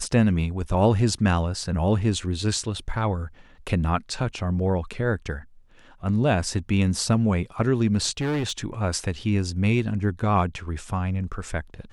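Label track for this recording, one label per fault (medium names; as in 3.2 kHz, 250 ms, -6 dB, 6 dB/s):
8.200000	8.660000	clipped -22 dBFS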